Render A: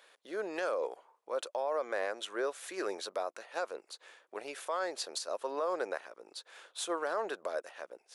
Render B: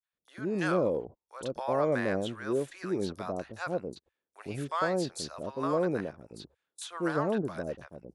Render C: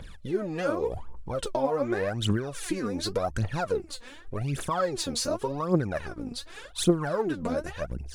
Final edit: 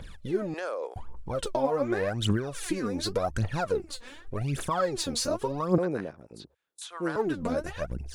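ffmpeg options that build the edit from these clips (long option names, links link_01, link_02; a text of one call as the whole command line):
ffmpeg -i take0.wav -i take1.wav -i take2.wav -filter_complex "[2:a]asplit=3[link_01][link_02][link_03];[link_01]atrim=end=0.542[link_04];[0:a]atrim=start=0.538:end=0.962[link_05];[link_02]atrim=start=0.958:end=5.782[link_06];[1:a]atrim=start=5.778:end=7.162[link_07];[link_03]atrim=start=7.158[link_08];[link_04][link_05]acrossfade=duration=0.004:curve1=hsin:curve2=hsin[link_09];[link_09][link_06]acrossfade=duration=0.004:curve1=hsin:curve2=hsin[link_10];[link_10][link_07]acrossfade=duration=0.004:curve1=hsin:curve2=hsin[link_11];[link_11][link_08]acrossfade=duration=0.004:curve1=hsin:curve2=hsin" out.wav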